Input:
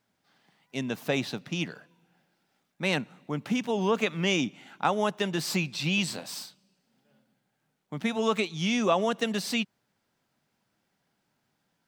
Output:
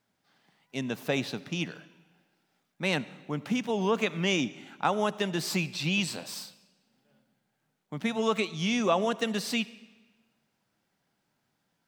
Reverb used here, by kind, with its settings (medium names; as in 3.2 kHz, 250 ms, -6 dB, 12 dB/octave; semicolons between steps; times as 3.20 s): algorithmic reverb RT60 1.3 s, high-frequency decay 0.9×, pre-delay 30 ms, DRR 18 dB; trim -1 dB